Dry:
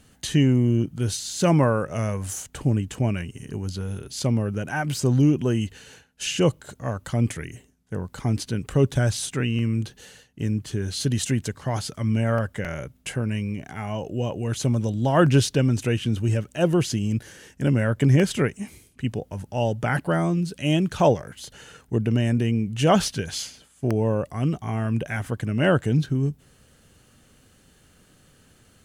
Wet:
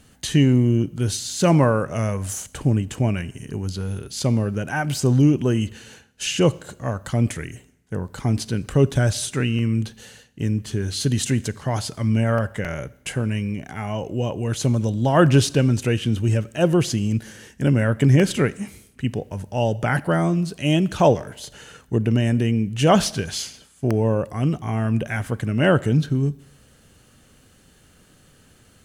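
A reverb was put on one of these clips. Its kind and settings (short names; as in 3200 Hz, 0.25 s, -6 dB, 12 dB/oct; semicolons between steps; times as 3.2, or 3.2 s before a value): Schroeder reverb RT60 0.82 s, combs from 28 ms, DRR 19.5 dB; gain +2.5 dB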